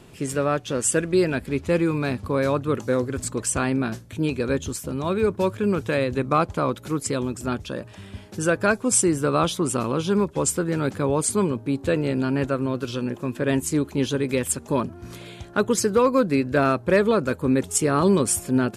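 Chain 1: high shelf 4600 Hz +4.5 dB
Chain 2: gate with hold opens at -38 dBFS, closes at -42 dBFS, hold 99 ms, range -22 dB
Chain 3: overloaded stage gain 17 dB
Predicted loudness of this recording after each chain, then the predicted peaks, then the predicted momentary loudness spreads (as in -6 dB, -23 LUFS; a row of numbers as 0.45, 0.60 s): -22.5, -23.0, -24.5 LUFS; -4.5, -8.5, -17.0 dBFS; 9, 9, 7 LU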